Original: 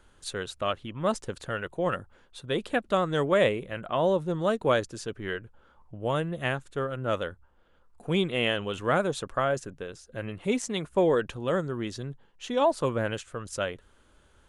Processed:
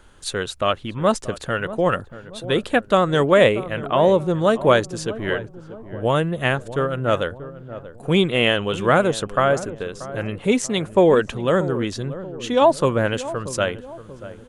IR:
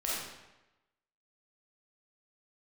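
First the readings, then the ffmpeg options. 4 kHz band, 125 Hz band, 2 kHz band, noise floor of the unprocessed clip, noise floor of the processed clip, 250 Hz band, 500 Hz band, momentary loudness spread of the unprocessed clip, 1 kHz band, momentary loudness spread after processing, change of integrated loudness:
+8.5 dB, +9.0 dB, +8.5 dB, -61 dBFS, -43 dBFS, +8.5 dB, +8.5 dB, 13 LU, +8.5 dB, 15 LU, +8.5 dB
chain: -filter_complex "[0:a]asplit=2[s0][s1];[s1]adelay=634,lowpass=f=820:p=1,volume=0.224,asplit=2[s2][s3];[s3]adelay=634,lowpass=f=820:p=1,volume=0.5,asplit=2[s4][s5];[s5]adelay=634,lowpass=f=820:p=1,volume=0.5,asplit=2[s6][s7];[s7]adelay=634,lowpass=f=820:p=1,volume=0.5,asplit=2[s8][s9];[s9]adelay=634,lowpass=f=820:p=1,volume=0.5[s10];[s0][s2][s4][s6][s8][s10]amix=inputs=6:normalize=0,volume=2.66"

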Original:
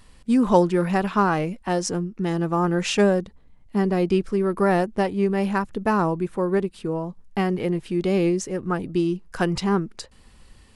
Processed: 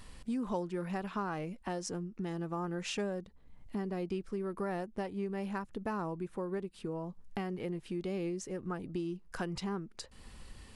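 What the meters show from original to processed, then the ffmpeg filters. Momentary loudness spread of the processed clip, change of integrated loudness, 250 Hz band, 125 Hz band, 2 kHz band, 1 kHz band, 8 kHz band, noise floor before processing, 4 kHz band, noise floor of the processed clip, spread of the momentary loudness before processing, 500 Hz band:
6 LU, -15.5 dB, -15.0 dB, -14.5 dB, -15.0 dB, -16.0 dB, -12.5 dB, -52 dBFS, -13.0 dB, -57 dBFS, 7 LU, -15.5 dB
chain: -af "acompressor=threshold=0.00794:ratio=2.5"

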